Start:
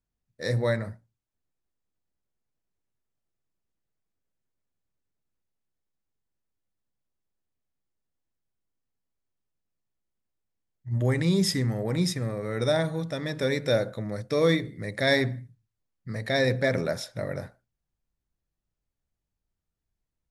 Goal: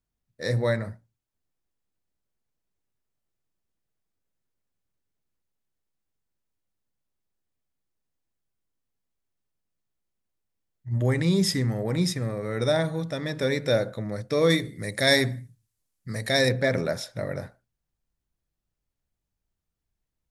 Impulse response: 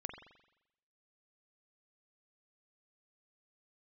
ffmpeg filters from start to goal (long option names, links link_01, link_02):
-filter_complex "[0:a]asettb=1/sr,asplit=3[link_01][link_02][link_03];[link_01]atrim=end=14.504[link_04];[link_02]atrim=start=14.5:end=16.49,asetpts=PTS-STARTPTS,afade=type=in:duration=0.004:curve=qsin,afade=type=out:start_time=1.986:duration=0.004:curve=qsin,equalizer=frequency=10000:width=0.49:gain=13[link_05];[link_03]atrim=start=16.486[link_06];[link_04][link_05]acrossfade=duration=0.004:curve1=hsin:curve2=qsin[link_07];[link_07][link_06]acrossfade=duration=0.004:curve1=qsin:curve2=hsin,volume=1dB"